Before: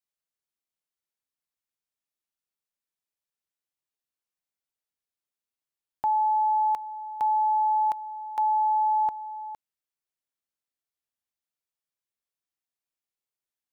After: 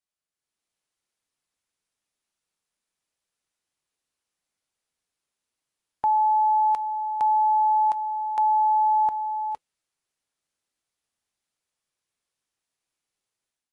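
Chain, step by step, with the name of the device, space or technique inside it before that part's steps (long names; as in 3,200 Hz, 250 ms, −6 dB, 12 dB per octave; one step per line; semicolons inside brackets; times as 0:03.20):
0:06.17–0:06.61: dynamic equaliser 740 Hz, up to +3 dB, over −40 dBFS, Q 3.4
low-bitrate web radio (automatic gain control gain up to 8.5 dB; brickwall limiter −17 dBFS, peak gain reduction 7 dB; AAC 48 kbit/s 24,000 Hz)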